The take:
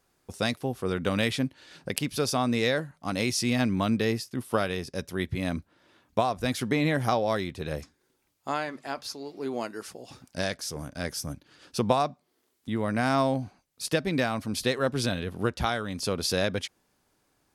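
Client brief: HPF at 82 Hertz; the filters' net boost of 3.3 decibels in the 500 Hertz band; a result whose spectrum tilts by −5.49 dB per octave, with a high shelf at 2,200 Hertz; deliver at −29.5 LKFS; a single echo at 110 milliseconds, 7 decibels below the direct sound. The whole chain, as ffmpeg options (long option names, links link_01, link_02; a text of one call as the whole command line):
ffmpeg -i in.wav -af "highpass=82,equalizer=frequency=500:width_type=o:gain=4.5,highshelf=frequency=2200:gain=-8.5,aecho=1:1:110:0.447,volume=-2dB" out.wav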